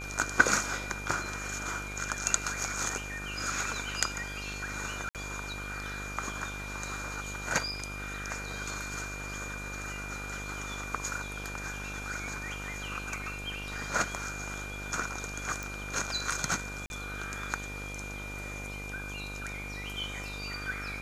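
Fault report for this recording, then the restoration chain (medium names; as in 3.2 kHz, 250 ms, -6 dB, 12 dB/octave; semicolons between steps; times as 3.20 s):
buzz 50 Hz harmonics 26 -42 dBFS
whine 2.4 kHz -41 dBFS
5.09–5.15 s: dropout 58 ms
15.63 s: pop
16.86–16.90 s: dropout 41 ms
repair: de-click; de-hum 50 Hz, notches 26; band-stop 2.4 kHz, Q 30; interpolate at 5.09 s, 58 ms; interpolate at 16.86 s, 41 ms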